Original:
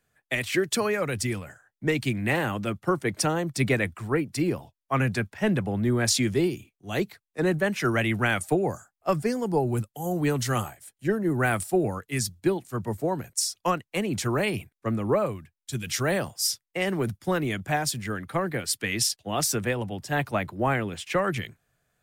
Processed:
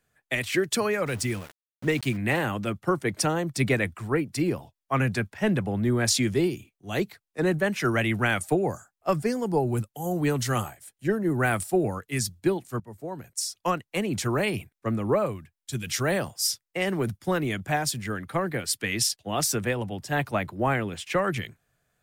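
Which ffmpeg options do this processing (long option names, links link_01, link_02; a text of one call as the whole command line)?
ffmpeg -i in.wav -filter_complex "[0:a]asettb=1/sr,asplit=3[link_01][link_02][link_03];[link_01]atrim=end=1.064[link_04];[link_02]atrim=start=1.06:end=2.17,asetpts=PTS-STARTPTS,afade=type=in:duration=0.004:curve=qsin,afade=type=out:start_time=1.106:duration=0.004:curve=qsin,aeval=exprs='val(0)*gte(abs(val(0)),0.0112)':channel_layout=same[link_05];[link_03]atrim=start=2.166[link_06];[link_04][link_05]acrossfade=duration=0.004:curve1=hsin:curve2=qsin[link_07];[link_07][link_06]acrossfade=duration=0.004:curve1=qsin:curve2=hsin,asplit=2[link_08][link_09];[link_08]atrim=end=12.8,asetpts=PTS-STARTPTS,afade=type=out:start_time=12.796:duration=0.004:curve=hsin:silence=0.133352[link_10];[link_09]atrim=start=12.8,asetpts=PTS-STARTPTS,afade=type=in:duration=1.01:silence=0.133352[link_11];[link_10][link_11]concat=n=2:v=0:a=1" out.wav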